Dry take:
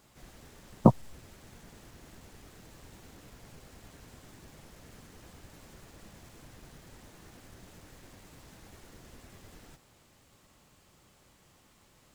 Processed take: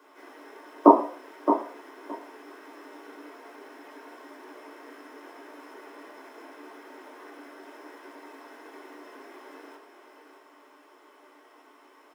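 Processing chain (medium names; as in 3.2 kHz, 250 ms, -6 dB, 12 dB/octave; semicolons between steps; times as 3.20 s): elliptic high-pass 290 Hz, stop band 40 dB; feedback delay 619 ms, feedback 16%, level -8.5 dB; reverberation RT60 0.50 s, pre-delay 3 ms, DRR -3 dB; trim -4.5 dB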